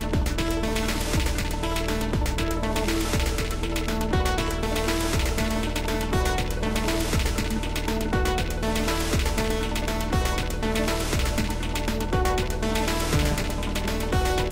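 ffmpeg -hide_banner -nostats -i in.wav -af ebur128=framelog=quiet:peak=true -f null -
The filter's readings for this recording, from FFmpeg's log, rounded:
Integrated loudness:
  I:         -25.9 LUFS
  Threshold: -35.9 LUFS
Loudness range:
  LRA:         0.5 LU
  Threshold: -45.9 LUFS
  LRA low:   -26.1 LUFS
  LRA high:  -25.6 LUFS
True peak:
  Peak:      -10.0 dBFS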